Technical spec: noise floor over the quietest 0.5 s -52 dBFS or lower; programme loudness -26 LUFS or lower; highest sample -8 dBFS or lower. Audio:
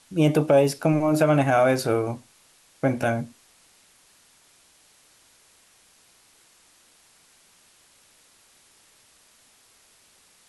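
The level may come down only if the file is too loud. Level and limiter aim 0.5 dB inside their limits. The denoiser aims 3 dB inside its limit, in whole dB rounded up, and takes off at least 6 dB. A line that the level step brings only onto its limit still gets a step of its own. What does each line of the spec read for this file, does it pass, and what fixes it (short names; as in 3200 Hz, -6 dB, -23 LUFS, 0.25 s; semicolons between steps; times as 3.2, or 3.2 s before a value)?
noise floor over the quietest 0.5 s -58 dBFS: OK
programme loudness -22.0 LUFS: fail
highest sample -7.5 dBFS: fail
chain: gain -4.5 dB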